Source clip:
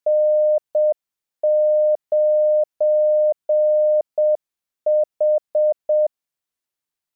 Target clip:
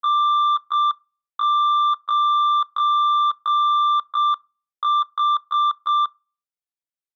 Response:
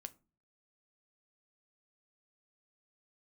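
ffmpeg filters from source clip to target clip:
-filter_complex "[0:a]asetrate=85689,aresample=44100,atempo=0.514651,aeval=exprs='0.237*(cos(1*acos(clip(val(0)/0.237,-1,1)))-cos(1*PI/2))+0.0473*(cos(3*acos(clip(val(0)/0.237,-1,1)))-cos(3*PI/2))+0.0015*(cos(5*acos(clip(val(0)/0.237,-1,1)))-cos(5*PI/2))':c=same,asplit=2[a][b];[1:a]atrim=start_sample=2205[c];[b][c]afir=irnorm=-1:irlink=0,volume=-3.5dB[d];[a][d]amix=inputs=2:normalize=0,volume=-4.5dB"

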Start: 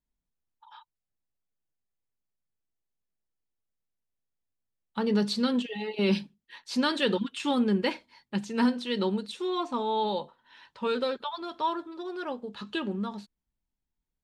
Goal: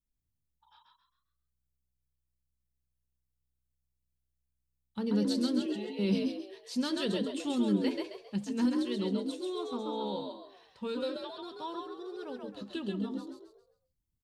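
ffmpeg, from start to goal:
-filter_complex "[0:a]equalizer=f=1.3k:w=0.32:g=-13.5,asplit=2[a][b];[b]asplit=5[c][d][e][f][g];[c]adelay=134,afreqshift=63,volume=-3.5dB[h];[d]adelay=268,afreqshift=126,volume=-12.4dB[i];[e]adelay=402,afreqshift=189,volume=-21.2dB[j];[f]adelay=536,afreqshift=252,volume=-30.1dB[k];[g]adelay=670,afreqshift=315,volume=-39dB[l];[h][i][j][k][l]amix=inputs=5:normalize=0[m];[a][m]amix=inputs=2:normalize=0"

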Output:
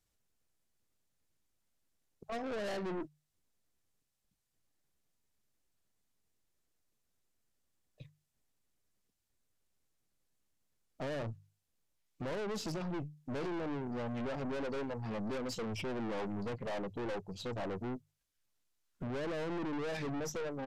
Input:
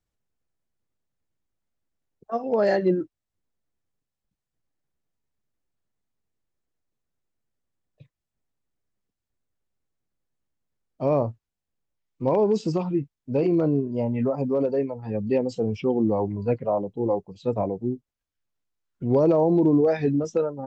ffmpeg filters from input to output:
-af "highshelf=f=2.8k:g=8,bandreject=f=50:t=h:w=6,bandreject=f=100:t=h:w=6,bandreject=f=150:t=h:w=6,alimiter=limit=-19.5dB:level=0:latency=1:release=250,aeval=exprs='(tanh(79.4*val(0)+0.45)-tanh(0.45))/79.4':c=same,aresample=32000,aresample=44100,volume=1.5dB"

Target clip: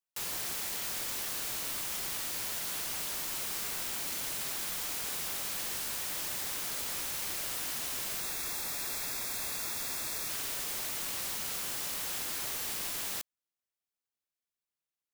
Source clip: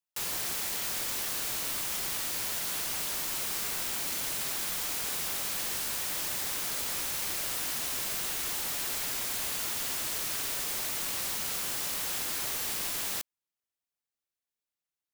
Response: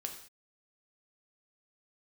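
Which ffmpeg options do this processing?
-filter_complex "[0:a]asettb=1/sr,asplit=3[a][b][c];[a]atrim=end=8.204[d];[b]atrim=start=8.2:end=10.29,asetpts=PTS-STARTPTS,afade=t=in:d=0.004:c=qsin,afade=t=out:st=2.086:d=0.004:c=qsin,asuperstop=centerf=3000:order=8:qfactor=6.7[e];[c]atrim=start=10.286[f];[d][e]acrossfade=d=0.004:c1=hsin:c2=qsin[g];[g][f]acrossfade=d=0.004:c1=qsin:c2=hsin,volume=-3dB"

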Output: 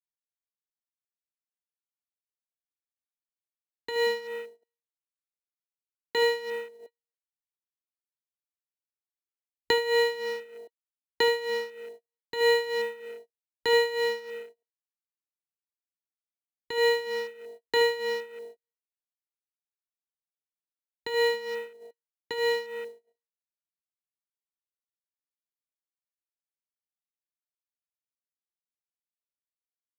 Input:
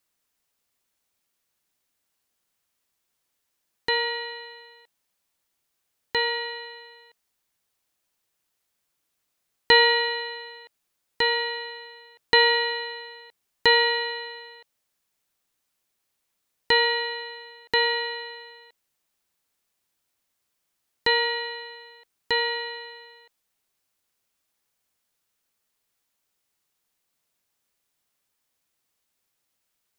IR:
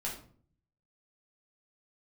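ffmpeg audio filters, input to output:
-filter_complex "[0:a]lowshelf=f=290:g=-6,aecho=1:1:28|75:0.299|0.224,afwtdn=0.0112,acrossover=split=140|920|2400[a][b][c][d];[a]acontrast=89[e];[e][b][c][d]amix=inputs=4:normalize=0,alimiter=limit=-14.5dB:level=0:latency=1:release=304,tremolo=f=3.2:d=0.77,agate=range=-31dB:threshold=-53dB:ratio=16:detection=peak,equalizer=f=370:t=o:w=1.4:g=9,acrusher=bits=6:mode=log:mix=0:aa=0.000001"

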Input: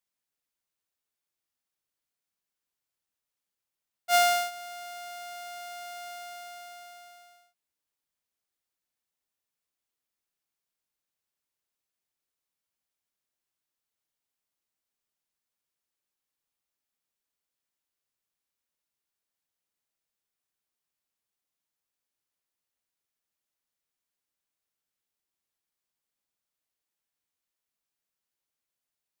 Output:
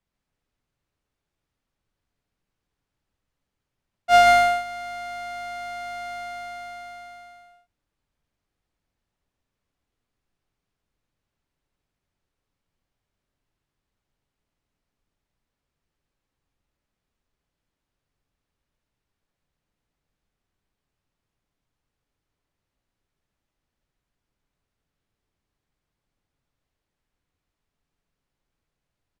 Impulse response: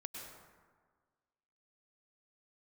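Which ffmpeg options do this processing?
-af "aemphasis=mode=reproduction:type=riaa,aecho=1:1:127|134:0.266|0.668,volume=8dB"

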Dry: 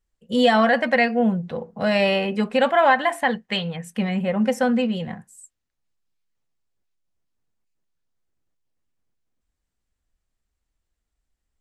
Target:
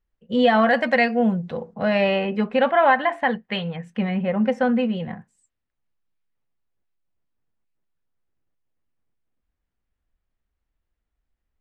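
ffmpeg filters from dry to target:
-af "asetnsamples=n=441:p=0,asendcmd='0.71 lowpass f 8200;1.74 lowpass f 2800',lowpass=2.9k"

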